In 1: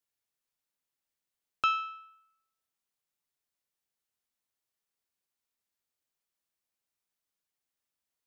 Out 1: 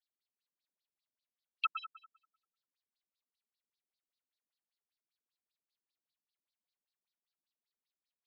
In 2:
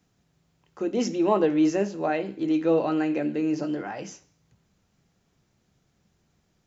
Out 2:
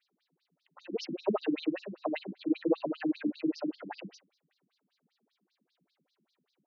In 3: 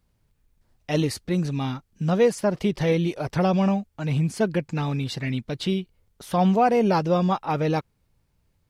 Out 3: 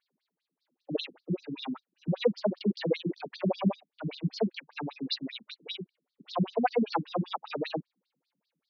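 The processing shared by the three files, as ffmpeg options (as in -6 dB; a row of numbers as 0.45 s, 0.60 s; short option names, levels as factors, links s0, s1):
-af "highshelf=f=5600:t=q:w=3:g=-9,afftfilt=real='re*between(b*sr/1024,210*pow(5300/210,0.5+0.5*sin(2*PI*5.1*pts/sr))/1.41,210*pow(5300/210,0.5+0.5*sin(2*PI*5.1*pts/sr))*1.41)':imag='im*between(b*sr/1024,210*pow(5300/210,0.5+0.5*sin(2*PI*5.1*pts/sr))/1.41,210*pow(5300/210,0.5+0.5*sin(2*PI*5.1*pts/sr))*1.41)':win_size=1024:overlap=0.75"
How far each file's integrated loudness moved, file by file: -6.5 LU, -8.5 LU, -9.0 LU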